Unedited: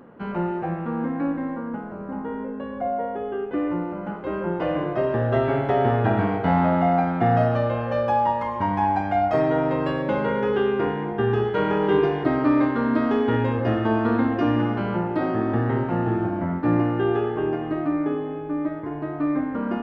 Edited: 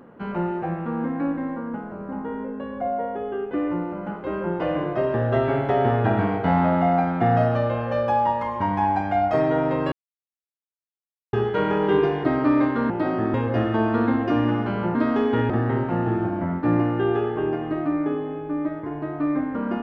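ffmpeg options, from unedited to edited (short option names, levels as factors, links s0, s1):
-filter_complex "[0:a]asplit=7[s0][s1][s2][s3][s4][s5][s6];[s0]atrim=end=9.92,asetpts=PTS-STARTPTS,afade=t=out:st=9.916:d=0.004:c=hsin[s7];[s1]atrim=start=9.92:end=11.33,asetpts=PTS-STARTPTS,volume=0[s8];[s2]atrim=start=11.33:end=12.902,asetpts=PTS-STARTPTS,afade=t=in:d=0.004:c=hsin[s9];[s3]atrim=start=15.058:end=15.502[s10];[s4]atrim=start=13.448:end=15.062[s11];[s5]atrim=start=12.898:end=13.452[s12];[s6]atrim=start=15.498[s13];[s7][s8][s9]concat=n=3:v=0:a=1[s14];[s14][s10]acrossfade=d=0.004:c1=hsin:c2=hsin[s15];[s15][s11]acrossfade=d=0.004:c1=hsin:c2=hsin[s16];[s16][s12]acrossfade=d=0.004:c1=hsin:c2=hsin[s17];[s17][s13]acrossfade=d=0.004:c1=hsin:c2=hsin"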